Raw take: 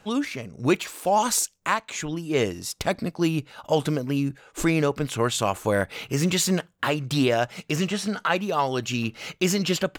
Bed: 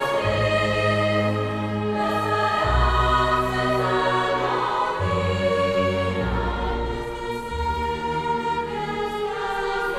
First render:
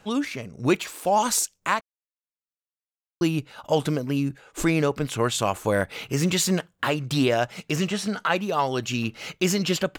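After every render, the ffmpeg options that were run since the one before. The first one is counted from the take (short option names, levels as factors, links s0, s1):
-filter_complex "[0:a]asplit=3[s0][s1][s2];[s0]atrim=end=1.81,asetpts=PTS-STARTPTS,afade=t=out:st=1.806:d=0.004:c=hsin[s3];[s1]atrim=start=1.81:end=3.21,asetpts=PTS-STARTPTS,volume=0[s4];[s2]atrim=start=3.21,asetpts=PTS-STARTPTS,afade=t=in:d=0.004:c=hsin[s5];[s3][s4][s5]concat=n=3:v=0:a=1"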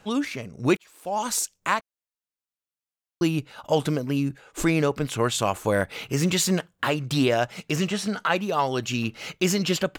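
-filter_complex "[0:a]asplit=2[s0][s1];[s0]atrim=end=0.77,asetpts=PTS-STARTPTS,afade=t=out:st=0.766:d=0.004:c=hsin[s2];[s1]atrim=start=0.77,asetpts=PTS-STARTPTS,afade=t=in:d=0.81[s3];[s2][s3]concat=n=2:v=0:a=1"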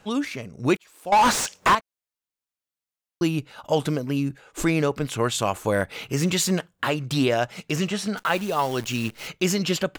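-filter_complex "[0:a]asettb=1/sr,asplit=3[s0][s1][s2];[s0]atrim=end=1.124[s3];[s1]atrim=start=1.12:end=1.75,asetpts=PTS-STARTPTS,afade=t=in:d=0.004:c=qsin,afade=t=out:st=0.626:d=0.004:c=qsin,asplit=2[s4][s5];[s5]highpass=f=720:p=1,volume=63.1,asoftclip=type=tanh:threshold=0.398[s6];[s4][s6]amix=inputs=2:normalize=0,lowpass=f=1700:p=1,volume=0.501[s7];[s2]atrim=start=1.746[s8];[s3][s7]acrossfade=d=0.004:c1=hsin:c2=qsin[s9];[s9][s8]acrossfade=d=0.004:c1=qsin:c2=hsin,asettb=1/sr,asplit=3[s10][s11][s12];[s10]atrim=end=8.174[s13];[s11]atrim=start=8.17:end=9.28,asetpts=PTS-STARTPTS,afade=t=in:d=0.004:c=qsin,afade=t=out:st=1.106:d=0.004:c=qsin,acrusher=bits=7:dc=4:mix=0:aa=0.000001[s14];[s12]atrim=start=9.276[s15];[s13][s14]acrossfade=d=0.004:c1=hsin:c2=qsin[s16];[s16][s15]acrossfade=d=0.004:c1=qsin:c2=hsin"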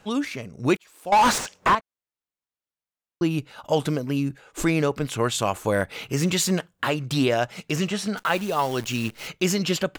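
-filter_complex "[0:a]asettb=1/sr,asplit=3[s0][s1][s2];[s0]atrim=end=1.384[s3];[s1]atrim=start=1.38:end=3.31,asetpts=PTS-STARTPTS,afade=t=in:d=0.004:c=qsin,afade=t=out:st=1.926:d=0.004:c=qsin,highshelf=f=3400:g=-9[s4];[s2]atrim=start=3.306[s5];[s3][s4]acrossfade=d=0.004:c1=hsin:c2=qsin[s6];[s6][s5]acrossfade=d=0.004:c1=qsin:c2=hsin"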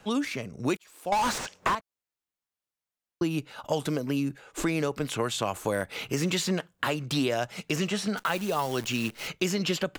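-filter_complex "[0:a]acrossover=split=170|4800[s0][s1][s2];[s0]acompressor=threshold=0.00891:ratio=4[s3];[s1]acompressor=threshold=0.0562:ratio=4[s4];[s2]acompressor=threshold=0.0126:ratio=4[s5];[s3][s4][s5]amix=inputs=3:normalize=0"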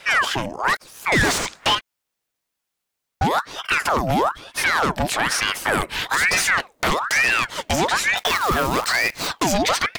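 -af "aeval=exprs='0.266*sin(PI/2*3.16*val(0)/0.266)':c=same,aeval=exprs='val(0)*sin(2*PI*1300*n/s+1300*0.7/1.1*sin(2*PI*1.1*n/s))':c=same"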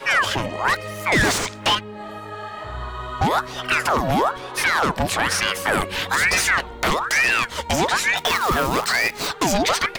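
-filter_complex "[1:a]volume=0.266[s0];[0:a][s0]amix=inputs=2:normalize=0"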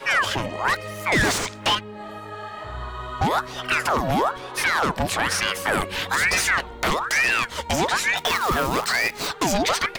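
-af "volume=0.794"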